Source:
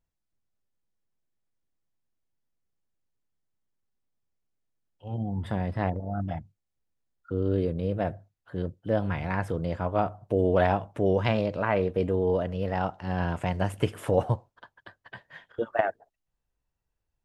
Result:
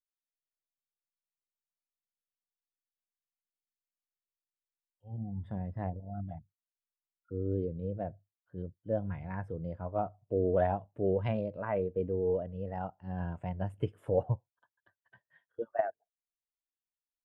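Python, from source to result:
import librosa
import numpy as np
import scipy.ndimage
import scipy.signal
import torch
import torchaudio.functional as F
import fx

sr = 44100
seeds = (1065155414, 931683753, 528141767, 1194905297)

y = fx.spectral_expand(x, sr, expansion=1.5)
y = F.gain(torch.from_numpy(y), -6.5).numpy()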